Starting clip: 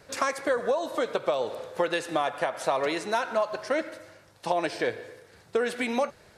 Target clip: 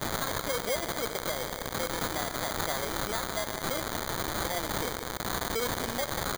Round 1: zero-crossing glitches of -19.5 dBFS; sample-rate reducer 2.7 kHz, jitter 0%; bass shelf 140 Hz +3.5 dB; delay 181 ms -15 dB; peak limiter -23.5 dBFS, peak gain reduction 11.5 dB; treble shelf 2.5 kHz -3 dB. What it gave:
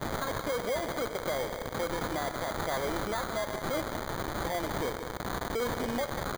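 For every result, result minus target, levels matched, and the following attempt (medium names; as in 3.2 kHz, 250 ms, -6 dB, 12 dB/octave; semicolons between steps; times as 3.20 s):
zero-crossing glitches: distortion -8 dB; 4 kHz band -4.0 dB
zero-crossing glitches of -11.5 dBFS; sample-rate reducer 2.7 kHz, jitter 0%; bass shelf 140 Hz +3.5 dB; delay 181 ms -15 dB; peak limiter -23.5 dBFS, peak gain reduction 14.5 dB; treble shelf 2.5 kHz -3 dB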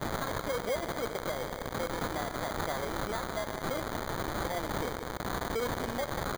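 4 kHz band -4.0 dB
zero-crossing glitches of -11.5 dBFS; sample-rate reducer 2.7 kHz, jitter 0%; bass shelf 140 Hz +3.5 dB; delay 181 ms -15 dB; peak limiter -23.5 dBFS, peak gain reduction 14.5 dB; treble shelf 2.5 kHz +7 dB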